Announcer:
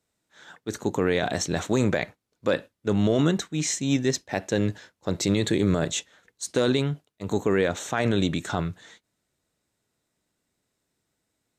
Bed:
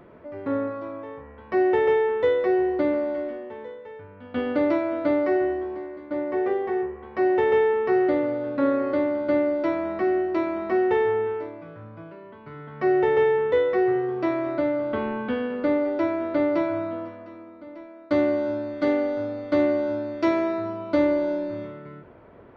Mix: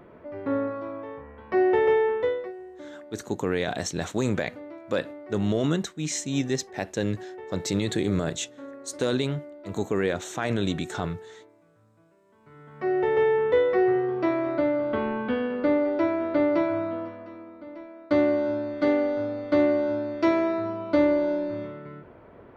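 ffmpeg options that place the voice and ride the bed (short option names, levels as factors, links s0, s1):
-filter_complex "[0:a]adelay=2450,volume=0.708[s0];[1:a]volume=8.91,afade=t=out:st=2.09:d=0.44:silence=0.112202,afade=t=in:st=12.25:d=1.23:silence=0.105925[s1];[s0][s1]amix=inputs=2:normalize=0"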